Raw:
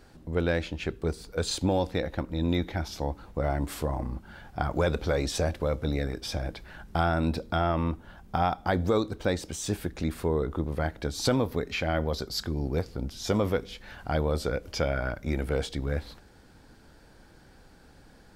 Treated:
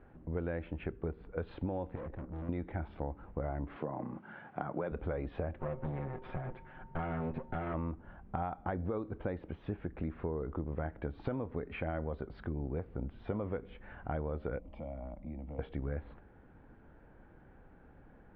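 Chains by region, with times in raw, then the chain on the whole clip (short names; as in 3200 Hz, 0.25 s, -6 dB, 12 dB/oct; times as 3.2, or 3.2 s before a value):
1.95–2.49 tilt shelf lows +4 dB, about 880 Hz + tube stage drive 36 dB, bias 0.65
3.76–4.92 HPF 140 Hz 24 dB/oct + mismatched tape noise reduction encoder only
5.59–7.73 minimum comb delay 7.8 ms + comb 5.5 ms, depth 33% + whine 910 Hz -54 dBFS
14.59–15.59 tone controls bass +5 dB, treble -7 dB + compressor 2.5:1, threshold -36 dBFS + fixed phaser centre 410 Hz, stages 6
whole clip: Bessel low-pass 1500 Hz, order 8; compressor, threshold -30 dBFS; gain -3 dB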